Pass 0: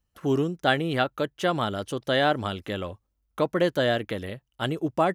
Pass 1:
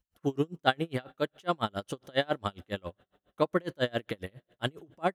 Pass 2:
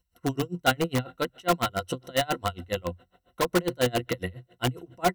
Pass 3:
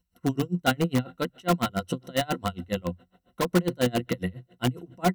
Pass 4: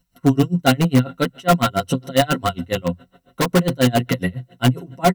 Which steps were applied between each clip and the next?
two-slope reverb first 0.23 s, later 3.5 s, from -21 dB, DRR 20 dB; logarithmic tremolo 7.3 Hz, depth 34 dB
rippled EQ curve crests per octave 2, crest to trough 13 dB; in parallel at -3 dB: integer overflow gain 21.5 dB
peaking EQ 200 Hz +10.5 dB 0.87 oct; trim -2 dB
comb 7.3 ms, depth 88%; in parallel at -4 dB: saturation -20 dBFS, distortion -9 dB; on the sum: trim +3.5 dB

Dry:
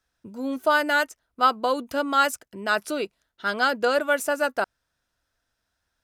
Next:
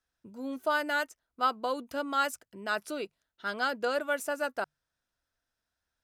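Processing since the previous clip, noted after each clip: hum notches 50/100/150 Hz; trim -8 dB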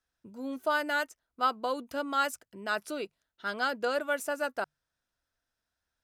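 no audible change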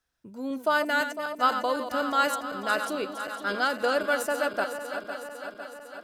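backward echo that repeats 252 ms, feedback 78%, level -9 dB; trim +4 dB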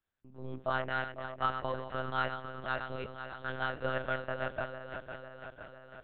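monotone LPC vocoder at 8 kHz 130 Hz; trim -8.5 dB

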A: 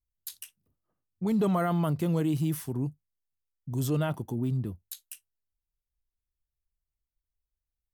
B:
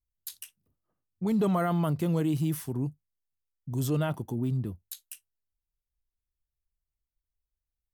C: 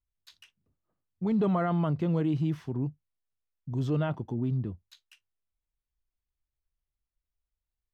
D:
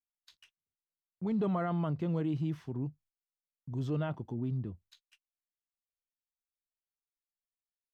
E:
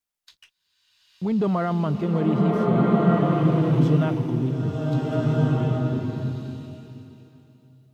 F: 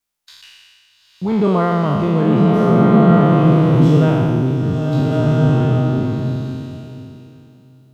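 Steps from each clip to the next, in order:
no audible change
distance through air 200 m
gate -57 dBFS, range -23 dB; trim -5 dB
swelling reverb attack 1540 ms, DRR -5 dB; trim +8.5 dB
spectral sustain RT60 1.90 s; trim +4.5 dB

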